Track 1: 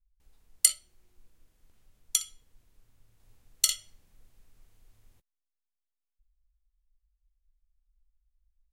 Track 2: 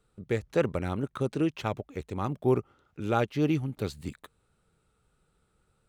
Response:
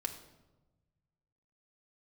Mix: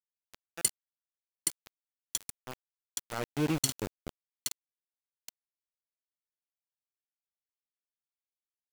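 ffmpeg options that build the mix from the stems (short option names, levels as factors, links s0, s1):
-filter_complex "[0:a]highpass=f=590:w=0.5412,highpass=f=590:w=1.3066,volume=0.473,asplit=2[s0][s1];[s1]volume=0.668[s2];[1:a]bandreject=f=2100:w=23,volume=0.668,afade=t=in:st=3.05:d=0.33:silence=0.281838,asplit=2[s3][s4];[s4]volume=0.168[s5];[s2][s5]amix=inputs=2:normalize=0,aecho=0:1:822|1644|2466|3288:1|0.3|0.09|0.027[s6];[s0][s3][s6]amix=inputs=3:normalize=0,aeval=exprs='val(0)*gte(abs(val(0)),0.0299)':c=same"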